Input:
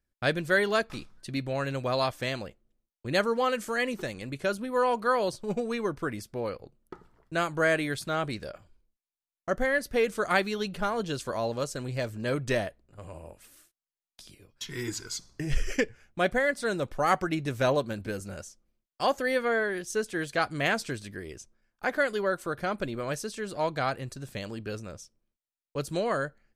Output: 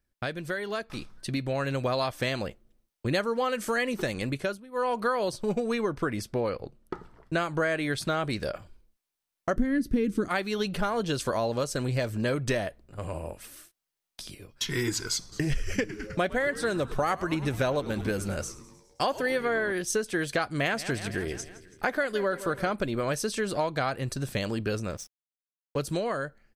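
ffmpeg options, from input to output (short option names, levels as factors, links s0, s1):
-filter_complex "[0:a]asettb=1/sr,asplit=3[s0][s1][s2];[s0]atrim=end=5.814[s3];[s1]atrim=start=5.81:end=8.1,asetpts=PTS-STARTPTS,afade=t=in:d=0.004:c=qsin,afade=t=out:st=2.286:d=0.004:c=qsin,highshelf=f=11000:g=-9.5[s4];[s2]atrim=start=8.096[s5];[s3][s4]acrossfade=d=0.004:c1=hsin:c2=qsin[s6];[s6][s5]acrossfade=d=0.004:c1=qsin:c2=hsin,asettb=1/sr,asplit=3[s7][s8][s9];[s7]atrim=end=9.564[s10];[s8]atrim=start=9.56:end=10.28,asetpts=PTS-STARTPTS,afade=t=in:d=0.004:c=qsin,afade=t=out:st=0.716:d=0.004:c=qsin,lowshelf=f=440:t=q:w=3:g=13.5[s11];[s9]atrim=start=10.276[s12];[s10][s11]acrossfade=d=0.004:c1=hsin:c2=qsin[s13];[s13][s12]acrossfade=d=0.004:c1=qsin:c2=hsin,asplit=3[s14][s15][s16];[s14]afade=t=out:st=15.31:d=0.02[s17];[s15]asplit=7[s18][s19][s20][s21][s22][s23][s24];[s19]adelay=104,afreqshift=-110,volume=0.141[s25];[s20]adelay=208,afreqshift=-220,volume=0.0902[s26];[s21]adelay=312,afreqshift=-330,volume=0.0575[s27];[s22]adelay=416,afreqshift=-440,volume=0.0372[s28];[s23]adelay=520,afreqshift=-550,volume=0.0237[s29];[s24]adelay=624,afreqshift=-660,volume=0.0151[s30];[s18][s25][s26][s27][s28][s29][s30]amix=inputs=7:normalize=0,afade=t=in:st=15.31:d=0.02,afade=t=out:st=19.71:d=0.02[s31];[s16]afade=t=in:st=19.71:d=0.02[s32];[s17][s31][s32]amix=inputs=3:normalize=0,asettb=1/sr,asplit=3[s33][s34][s35];[s33]atrim=end=20.564[s36];[s34]atrim=start=20.56:end=22.73,asetpts=PTS-STARTPTS,afade=t=in:d=0.004:c=qsin,afade=t=out:st=2.166:d=0.004:c=qsin,aecho=1:1:165|330|495|660|825:0.133|0.0787|0.0464|0.0274|0.0162,atrim=end_sample=95697[s37];[s35]atrim=start=22.726[s38];[s36][s37]acrossfade=d=0.004:c1=hsin:c2=qsin[s39];[s39][s38]acrossfade=d=0.004:c1=qsin:c2=hsin,asettb=1/sr,asplit=3[s40][s41][s42];[s40]atrim=end=24.914[s43];[s41]atrim=start=24.91:end=25.8,asetpts=PTS-STARTPTS,afade=t=in:d=0.004:c=qsin,afade=t=out:st=0.886:d=0.004:c=qsin,aeval=exprs='sgn(val(0))*max(abs(val(0))-0.00168,0)':c=same[s44];[s42]atrim=start=25.796[s45];[s43][s44]acrossfade=d=0.004:c1=hsin:c2=qsin[s46];[s46][s45]acrossfade=d=0.004:c1=qsin:c2=hsin,asplit=3[s47][s48][s49];[s47]atrim=end=4.61,asetpts=PTS-STARTPTS,afade=t=out:st=4.25:d=0.36:silence=0.0794328[s50];[s48]atrim=start=4.61:end=4.71,asetpts=PTS-STARTPTS,volume=0.0794[s51];[s49]atrim=start=4.71,asetpts=PTS-STARTPTS,afade=t=in:d=0.36:silence=0.0794328[s52];[s50][s51][s52]concat=n=3:v=0:a=1,acompressor=threshold=0.0224:ratio=6,bandreject=f=7000:w=18,dynaudnorm=f=200:g=13:m=1.88,volume=1.41"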